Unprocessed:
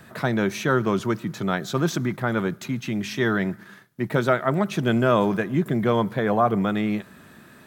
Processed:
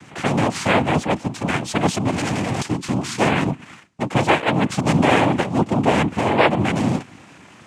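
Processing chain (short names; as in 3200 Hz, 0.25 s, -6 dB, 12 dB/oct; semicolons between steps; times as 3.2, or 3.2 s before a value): 2.12–2.62 infinite clipping; noise vocoder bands 4; gain +4 dB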